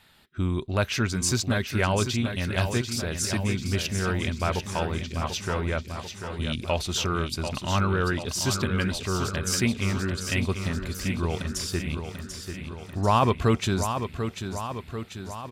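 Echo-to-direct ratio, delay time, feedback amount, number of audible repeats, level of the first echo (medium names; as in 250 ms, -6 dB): -6.0 dB, 741 ms, 60%, 7, -8.0 dB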